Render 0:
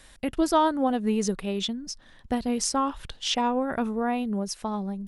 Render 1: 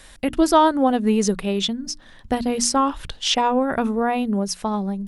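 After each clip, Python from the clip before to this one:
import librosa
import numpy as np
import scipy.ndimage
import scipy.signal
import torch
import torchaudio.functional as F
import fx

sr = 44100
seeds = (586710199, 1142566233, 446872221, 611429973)

y = fx.hum_notches(x, sr, base_hz=60, count=5)
y = y * librosa.db_to_amplitude(6.5)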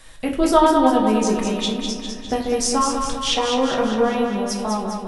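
y = fx.echo_feedback(x, sr, ms=202, feedback_pct=58, wet_db=-5.5)
y = fx.room_shoebox(y, sr, seeds[0], volume_m3=55.0, walls='mixed', distance_m=0.57)
y = y * librosa.db_to_amplitude(-3.0)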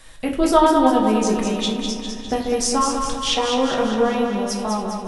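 y = fx.echo_feedback(x, sr, ms=280, feedback_pct=58, wet_db=-19.5)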